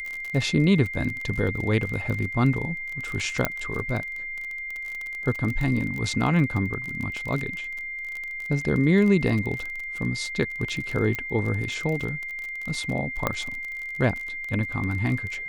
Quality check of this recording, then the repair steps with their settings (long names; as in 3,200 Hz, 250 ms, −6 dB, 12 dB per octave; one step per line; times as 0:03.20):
surface crackle 32 per second −29 dBFS
whistle 2,100 Hz −31 dBFS
0:03.45: click −7 dBFS
0:11.15: click −15 dBFS
0:13.27: click −10 dBFS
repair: click removal
notch filter 2,100 Hz, Q 30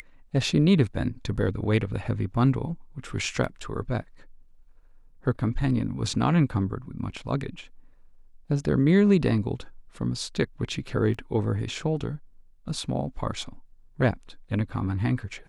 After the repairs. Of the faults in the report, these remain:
0:03.45: click
0:11.15: click